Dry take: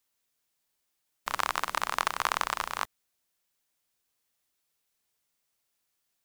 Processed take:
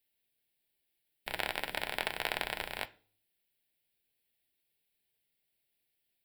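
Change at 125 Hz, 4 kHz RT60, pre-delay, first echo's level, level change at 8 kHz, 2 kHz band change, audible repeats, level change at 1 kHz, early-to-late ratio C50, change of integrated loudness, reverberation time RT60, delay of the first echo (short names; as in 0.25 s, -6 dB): +0.5 dB, 0.45 s, 3 ms, none, -9.5 dB, -3.0 dB, none, -11.0 dB, 20.5 dB, -5.5 dB, 0.45 s, none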